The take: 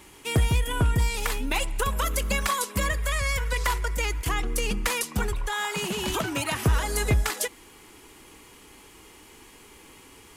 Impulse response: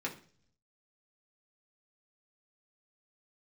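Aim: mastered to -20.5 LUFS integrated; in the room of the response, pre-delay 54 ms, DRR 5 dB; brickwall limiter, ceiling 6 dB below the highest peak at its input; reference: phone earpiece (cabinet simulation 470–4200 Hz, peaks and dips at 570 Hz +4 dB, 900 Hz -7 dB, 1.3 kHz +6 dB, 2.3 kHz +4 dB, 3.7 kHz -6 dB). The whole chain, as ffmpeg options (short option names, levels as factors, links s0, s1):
-filter_complex "[0:a]alimiter=limit=0.1:level=0:latency=1,asplit=2[s0][s1];[1:a]atrim=start_sample=2205,adelay=54[s2];[s1][s2]afir=irnorm=-1:irlink=0,volume=0.398[s3];[s0][s3]amix=inputs=2:normalize=0,highpass=470,equalizer=f=570:t=q:w=4:g=4,equalizer=f=900:t=q:w=4:g=-7,equalizer=f=1300:t=q:w=4:g=6,equalizer=f=2300:t=q:w=4:g=4,equalizer=f=3700:t=q:w=4:g=-6,lowpass=f=4200:w=0.5412,lowpass=f=4200:w=1.3066,volume=3.16"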